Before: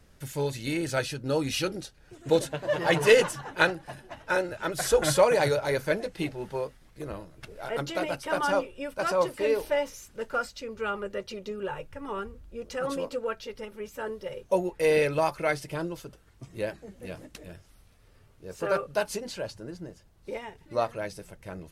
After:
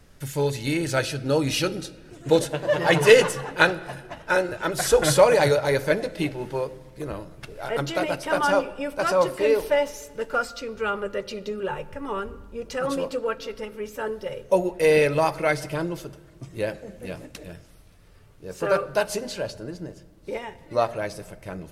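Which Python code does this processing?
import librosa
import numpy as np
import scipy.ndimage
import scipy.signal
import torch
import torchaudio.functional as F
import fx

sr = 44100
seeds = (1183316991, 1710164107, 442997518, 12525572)

y = fx.room_shoebox(x, sr, seeds[0], volume_m3=1500.0, walls='mixed', distance_m=0.32)
y = F.gain(torch.from_numpy(y), 4.5).numpy()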